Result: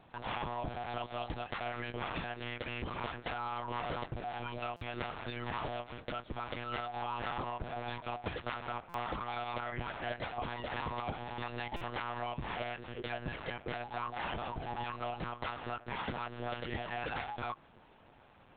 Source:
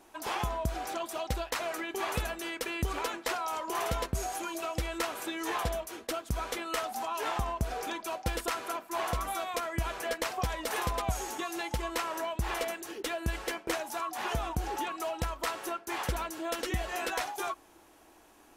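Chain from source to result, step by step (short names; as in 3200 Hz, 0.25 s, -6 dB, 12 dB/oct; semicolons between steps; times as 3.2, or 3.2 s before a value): compressor 3:1, threshold -35 dBFS, peak gain reduction 8 dB; monotone LPC vocoder at 8 kHz 120 Hz; low shelf 62 Hz -8.5 dB; stuck buffer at 4.76/8.89/11.76, samples 256, times 8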